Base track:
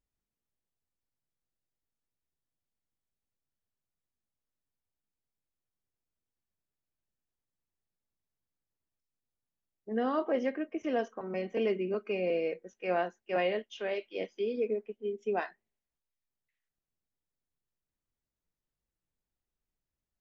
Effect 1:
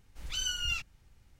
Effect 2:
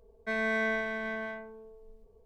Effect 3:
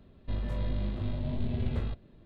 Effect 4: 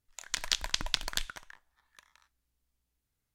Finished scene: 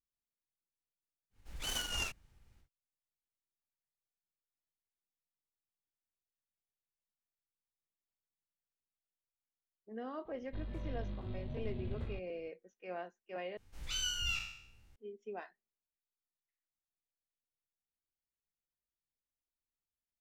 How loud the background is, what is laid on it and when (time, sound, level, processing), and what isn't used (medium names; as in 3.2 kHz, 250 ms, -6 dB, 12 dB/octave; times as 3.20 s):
base track -13 dB
1.30 s: add 1 -4.5 dB, fades 0.10 s + delay time shaken by noise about 3.2 kHz, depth 0.031 ms
10.25 s: add 3 -10 dB
13.57 s: replace with 1 -5.5 dB + spectral sustain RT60 0.69 s
not used: 2, 4